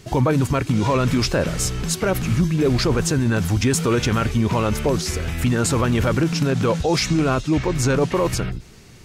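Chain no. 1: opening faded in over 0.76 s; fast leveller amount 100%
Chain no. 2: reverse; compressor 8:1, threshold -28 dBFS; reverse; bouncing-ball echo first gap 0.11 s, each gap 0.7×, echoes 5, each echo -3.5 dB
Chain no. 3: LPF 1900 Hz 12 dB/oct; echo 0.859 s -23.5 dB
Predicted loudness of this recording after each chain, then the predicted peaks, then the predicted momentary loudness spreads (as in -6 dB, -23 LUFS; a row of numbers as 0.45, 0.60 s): -15.5, -29.0, -21.0 LUFS; -1.0, -16.0, -9.5 dBFS; 1, 1, 5 LU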